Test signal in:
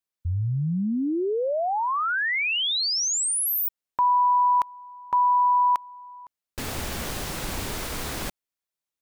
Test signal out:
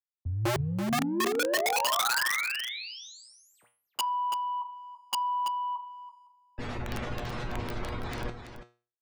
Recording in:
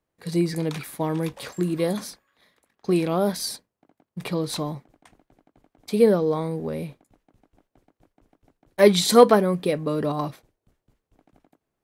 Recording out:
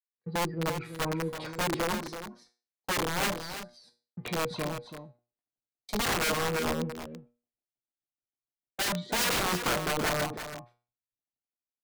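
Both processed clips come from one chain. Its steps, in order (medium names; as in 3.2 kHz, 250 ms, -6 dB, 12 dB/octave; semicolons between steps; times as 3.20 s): spectral gate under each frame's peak -20 dB strong; gate -44 dBFS, range -26 dB; waveshaping leveller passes 1; in parallel at +2.5 dB: compression 8:1, threshold -25 dBFS; on the sum: low-pass that closes with the level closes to 1.4 kHz, closed at -13.5 dBFS; saturation -7 dBFS; feedback comb 120 Hz, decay 0.38 s, harmonics all, mix 80%; integer overflow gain 22 dB; on a send: delay 332 ms -7.5 dB; on the sum: three bands expanded up and down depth 40%; trim -2 dB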